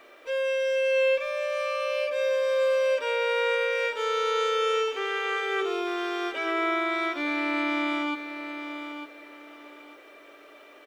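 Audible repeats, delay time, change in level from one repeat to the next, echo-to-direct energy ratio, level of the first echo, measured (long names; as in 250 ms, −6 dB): 3, 903 ms, −12.0 dB, −8.5 dB, −9.0 dB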